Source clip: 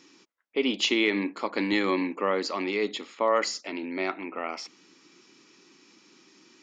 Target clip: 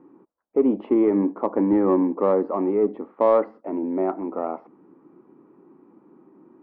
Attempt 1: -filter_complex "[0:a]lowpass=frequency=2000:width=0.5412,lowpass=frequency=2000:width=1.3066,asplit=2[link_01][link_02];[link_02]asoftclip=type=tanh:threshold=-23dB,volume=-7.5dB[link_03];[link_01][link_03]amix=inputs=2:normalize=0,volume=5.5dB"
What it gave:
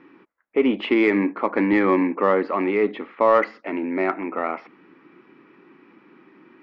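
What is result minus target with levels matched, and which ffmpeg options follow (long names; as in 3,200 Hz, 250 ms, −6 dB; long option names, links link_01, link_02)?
2,000 Hz band +18.5 dB
-filter_complex "[0:a]lowpass=frequency=960:width=0.5412,lowpass=frequency=960:width=1.3066,asplit=2[link_01][link_02];[link_02]asoftclip=type=tanh:threshold=-23dB,volume=-7.5dB[link_03];[link_01][link_03]amix=inputs=2:normalize=0,volume=5.5dB"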